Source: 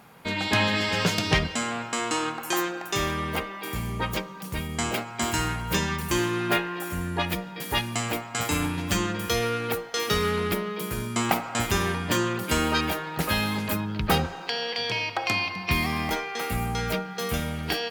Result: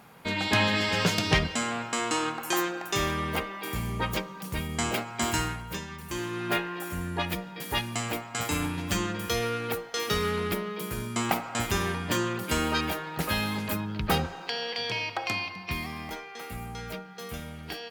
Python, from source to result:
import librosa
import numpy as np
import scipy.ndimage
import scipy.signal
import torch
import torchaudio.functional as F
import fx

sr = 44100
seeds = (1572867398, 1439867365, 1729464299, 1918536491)

y = fx.gain(x, sr, db=fx.line((5.36, -1.0), (5.87, -13.0), (6.59, -3.0), (15.12, -3.0), (15.95, -10.0)))